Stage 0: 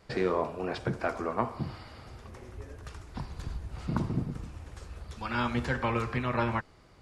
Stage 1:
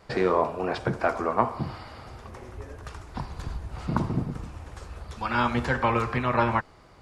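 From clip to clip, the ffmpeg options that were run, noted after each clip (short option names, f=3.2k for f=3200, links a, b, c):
-af "equalizer=f=900:t=o:w=1.6:g=5,volume=3dB"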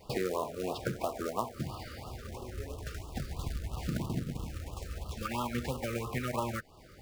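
-af "acrusher=bits=3:mode=log:mix=0:aa=0.000001,acompressor=threshold=-32dB:ratio=3,afftfilt=real='re*(1-between(b*sr/1024,810*pow(1900/810,0.5+0.5*sin(2*PI*3*pts/sr))/1.41,810*pow(1900/810,0.5+0.5*sin(2*PI*3*pts/sr))*1.41))':imag='im*(1-between(b*sr/1024,810*pow(1900/810,0.5+0.5*sin(2*PI*3*pts/sr))/1.41,810*pow(1900/810,0.5+0.5*sin(2*PI*3*pts/sr))*1.41))':win_size=1024:overlap=0.75"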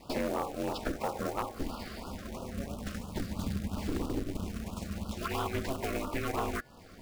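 -af "bandreject=f=317.7:t=h:w=4,bandreject=f=635.4:t=h:w=4,bandreject=f=953.1:t=h:w=4,bandreject=f=1.2708k:t=h:w=4,bandreject=f=1.5885k:t=h:w=4,aeval=exprs='val(0)*sin(2*PI*140*n/s)':c=same,volume=30dB,asoftclip=hard,volume=-30dB,volume=5dB"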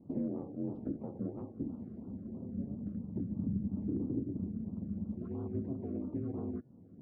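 -af "asuperpass=centerf=180:order=4:qfactor=0.86,volume=2dB"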